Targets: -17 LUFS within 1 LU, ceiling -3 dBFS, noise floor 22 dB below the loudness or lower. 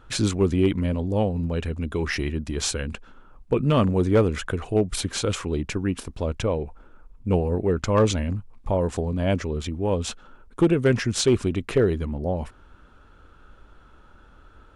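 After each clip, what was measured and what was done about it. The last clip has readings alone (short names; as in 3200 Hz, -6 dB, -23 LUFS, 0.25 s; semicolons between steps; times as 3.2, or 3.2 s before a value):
clipped 0.3%; flat tops at -11.5 dBFS; loudness -24.5 LUFS; peak -11.5 dBFS; loudness target -17.0 LUFS
-> clip repair -11.5 dBFS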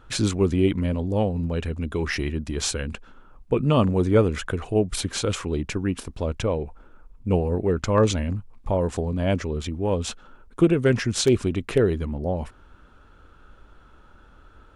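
clipped 0.0%; loudness -24.5 LUFS; peak -6.5 dBFS; loudness target -17.0 LUFS
-> gain +7.5 dB; limiter -3 dBFS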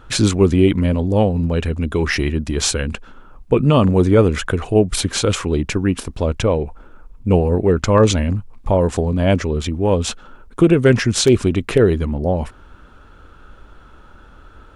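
loudness -17.5 LUFS; peak -3.0 dBFS; noise floor -44 dBFS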